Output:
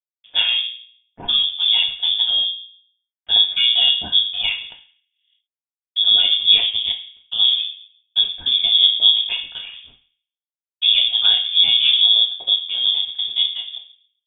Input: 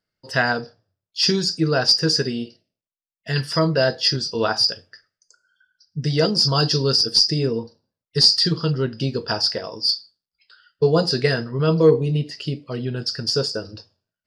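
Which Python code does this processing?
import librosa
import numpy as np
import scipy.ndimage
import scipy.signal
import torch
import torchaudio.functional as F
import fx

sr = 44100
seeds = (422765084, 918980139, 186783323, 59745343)

y = fx.octave_divider(x, sr, octaves=2, level_db=-6.0)
y = fx.low_shelf(y, sr, hz=490.0, db=10.0)
y = fx.leveller(y, sr, passes=1)
y = fx.fixed_phaser(y, sr, hz=1600.0, stages=6)
y = np.sign(y) * np.maximum(np.abs(y) - 10.0 ** (-36.0 / 20.0), 0.0)
y = fx.power_curve(y, sr, exponent=3.0, at=(6.56, 7.39))
y = fx.rev_fdn(y, sr, rt60_s=0.59, lf_ratio=1.0, hf_ratio=0.55, size_ms=23.0, drr_db=1.0)
y = fx.freq_invert(y, sr, carrier_hz=3500)
y = fx.pre_swell(y, sr, db_per_s=68.0, at=(4.58, 6.0))
y = y * 10.0 ** (-7.5 / 20.0)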